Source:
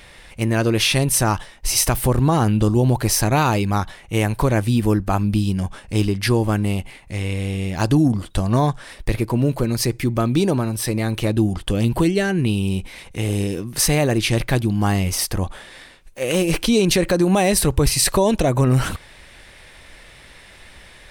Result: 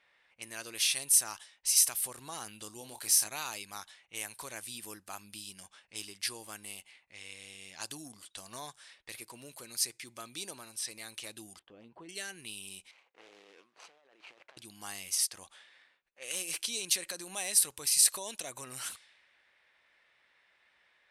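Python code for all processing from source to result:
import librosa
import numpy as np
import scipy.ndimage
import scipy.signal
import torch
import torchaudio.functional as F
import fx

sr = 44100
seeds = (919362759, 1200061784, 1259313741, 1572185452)

y = fx.chain(x, sr, fx.highpass(hz=40.0, slope=12),
    fx.doubler(ms=28.0, db=-8.0), at=(2.78, 3.28))
y = fx.chain(y, sr, fx.bessel_lowpass(hz=760.0, order=2),
    fx.low_shelf(hz=120.0, db=-9.5),
    fx.doubler(ms=13.0, db=-13), at=(11.59, 12.09))
y = fx.chain(y, sr, fx.median_filter(points=25),
    fx.highpass(hz=510.0, slope=12),
    fx.over_compress(threshold_db=-34.0, ratio=-1.0), at=(12.91, 14.57))
y = fx.env_lowpass(y, sr, base_hz=1400.0, full_db=-16.5)
y = scipy.signal.sosfilt(scipy.signal.butter(4, 12000.0, 'lowpass', fs=sr, output='sos'), y)
y = np.diff(y, prepend=0.0)
y = F.gain(torch.from_numpy(y), -5.0).numpy()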